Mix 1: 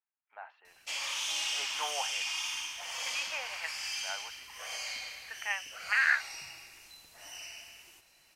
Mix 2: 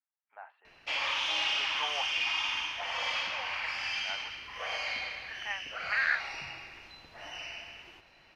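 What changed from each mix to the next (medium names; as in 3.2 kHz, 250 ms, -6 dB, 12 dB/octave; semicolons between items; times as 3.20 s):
background +10.0 dB; master: add distance through air 310 m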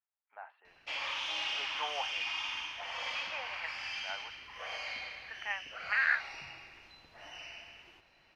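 background -5.5 dB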